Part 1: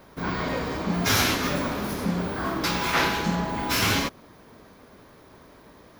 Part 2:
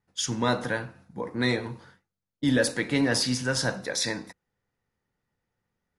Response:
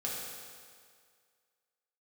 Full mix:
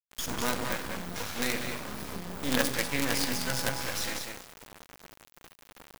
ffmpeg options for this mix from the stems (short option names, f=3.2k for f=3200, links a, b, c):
-filter_complex "[0:a]acompressor=threshold=-33dB:ratio=16,adelay=100,volume=1dB,asplit=3[a][b][c];[b]volume=-16dB[d];[c]volume=-19dB[e];[1:a]equalizer=f=2.4k:t=o:w=0.29:g=8.5,acrusher=bits=4:mix=0:aa=0.000001,volume=-5dB,asplit=4[f][g][h][i];[g]volume=-10.5dB[j];[h]volume=-4dB[k];[i]apad=whole_len=268673[l];[a][l]sidechaincompress=threshold=-30dB:ratio=8:attack=26:release=109[m];[2:a]atrim=start_sample=2205[n];[d][j]amix=inputs=2:normalize=0[o];[o][n]afir=irnorm=-1:irlink=0[p];[e][k]amix=inputs=2:normalize=0,aecho=0:1:195:1[q];[m][f][p][q]amix=inputs=4:normalize=0,adynamicequalizer=threshold=0.00708:dfrequency=360:dqfactor=1.9:tfrequency=360:tqfactor=1.9:attack=5:release=100:ratio=0.375:range=2:mode=cutabove:tftype=bell,acrusher=bits=4:dc=4:mix=0:aa=0.000001"